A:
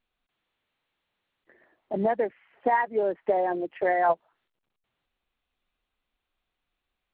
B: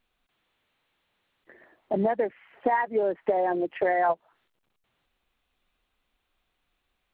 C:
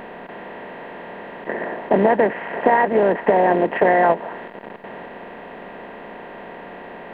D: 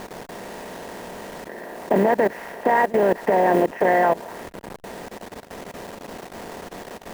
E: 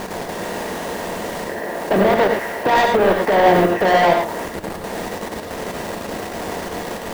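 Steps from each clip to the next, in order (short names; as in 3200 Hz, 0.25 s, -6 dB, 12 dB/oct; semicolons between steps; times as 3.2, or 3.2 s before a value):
compressor 2.5:1, threshold -30 dBFS, peak gain reduction 8.5 dB; gain +6 dB
per-bin compression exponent 0.4; gain +5 dB
level-crossing sampler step -34 dBFS; level quantiser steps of 19 dB; gain +2 dB
soft clip -20.5 dBFS, distortion -8 dB; non-linear reverb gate 0.13 s rising, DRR 2 dB; gain +8 dB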